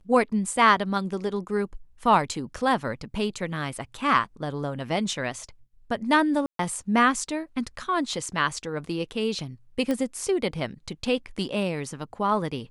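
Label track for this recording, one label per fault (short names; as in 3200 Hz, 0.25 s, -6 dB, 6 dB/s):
6.460000	6.590000	gap 0.133 s
9.910000	9.910000	pop -15 dBFS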